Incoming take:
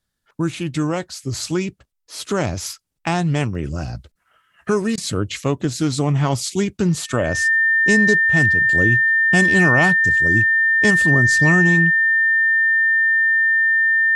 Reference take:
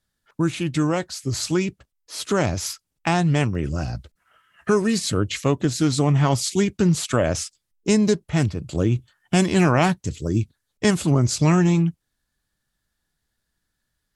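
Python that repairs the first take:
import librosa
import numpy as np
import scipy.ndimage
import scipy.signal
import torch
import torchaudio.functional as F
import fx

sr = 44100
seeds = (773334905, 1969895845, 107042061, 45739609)

y = fx.notch(x, sr, hz=1800.0, q=30.0)
y = fx.fix_interpolate(y, sr, at_s=(4.96,), length_ms=15.0)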